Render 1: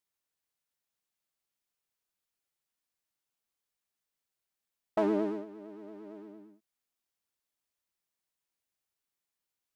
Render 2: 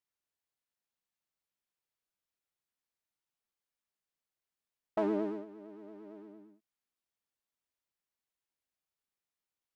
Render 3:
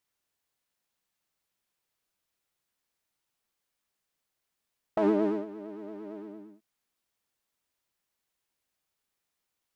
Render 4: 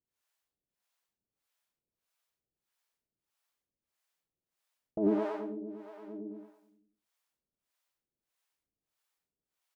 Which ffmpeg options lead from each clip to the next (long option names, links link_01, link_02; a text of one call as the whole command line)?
ffmpeg -i in.wav -af "highshelf=frequency=4600:gain=-5.5,volume=-3dB" out.wav
ffmpeg -i in.wav -af "alimiter=level_in=1dB:limit=-24dB:level=0:latency=1:release=42,volume=-1dB,volume=8.5dB" out.wav
ffmpeg -i in.wav -filter_complex "[0:a]asplit=2[link_01][link_02];[link_02]adelay=92,lowpass=frequency=1400:poles=1,volume=-3.5dB,asplit=2[link_03][link_04];[link_04]adelay=92,lowpass=frequency=1400:poles=1,volume=0.4,asplit=2[link_05][link_06];[link_06]adelay=92,lowpass=frequency=1400:poles=1,volume=0.4,asplit=2[link_07][link_08];[link_08]adelay=92,lowpass=frequency=1400:poles=1,volume=0.4,asplit=2[link_09][link_10];[link_10]adelay=92,lowpass=frequency=1400:poles=1,volume=0.4[link_11];[link_01][link_03][link_05][link_07][link_09][link_11]amix=inputs=6:normalize=0,acrossover=split=530[link_12][link_13];[link_12]aeval=exprs='val(0)*(1-1/2+1/2*cos(2*PI*1.6*n/s))':channel_layout=same[link_14];[link_13]aeval=exprs='val(0)*(1-1/2-1/2*cos(2*PI*1.6*n/s))':channel_layout=same[link_15];[link_14][link_15]amix=inputs=2:normalize=0" out.wav